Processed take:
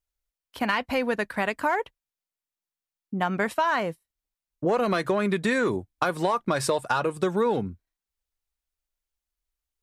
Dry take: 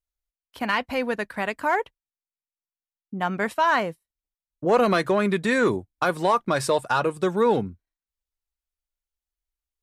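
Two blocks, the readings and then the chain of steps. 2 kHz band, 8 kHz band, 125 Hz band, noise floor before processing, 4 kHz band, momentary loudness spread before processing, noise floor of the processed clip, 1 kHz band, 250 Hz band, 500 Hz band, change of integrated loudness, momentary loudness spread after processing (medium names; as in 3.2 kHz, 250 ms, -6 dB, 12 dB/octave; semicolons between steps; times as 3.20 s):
-2.0 dB, 0.0 dB, -1.0 dB, under -85 dBFS, -2.0 dB, 9 LU, under -85 dBFS, -3.0 dB, -1.5 dB, -2.5 dB, -2.5 dB, 6 LU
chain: compression, threshold -23 dBFS, peak gain reduction 9 dB; trim +2.5 dB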